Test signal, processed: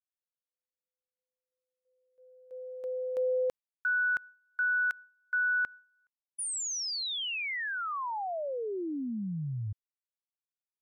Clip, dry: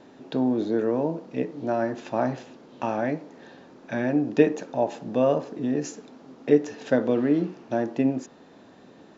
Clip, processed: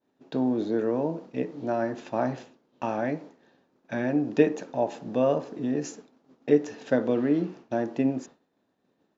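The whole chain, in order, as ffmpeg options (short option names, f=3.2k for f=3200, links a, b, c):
-af "agate=range=-33dB:threshold=-37dB:ratio=3:detection=peak,volume=-2dB"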